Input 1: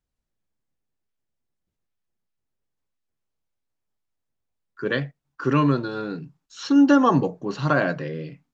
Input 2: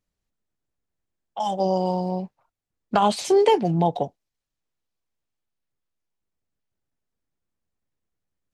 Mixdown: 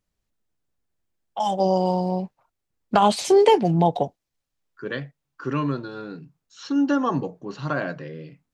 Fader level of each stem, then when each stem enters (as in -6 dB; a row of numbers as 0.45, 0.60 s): -5.5, +2.0 dB; 0.00, 0.00 s